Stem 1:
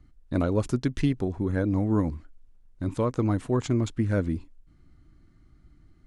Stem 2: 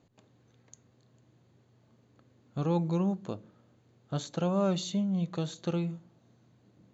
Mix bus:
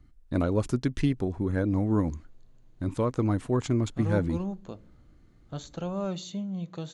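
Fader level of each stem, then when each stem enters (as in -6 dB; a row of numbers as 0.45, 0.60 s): -1.0, -4.0 dB; 0.00, 1.40 s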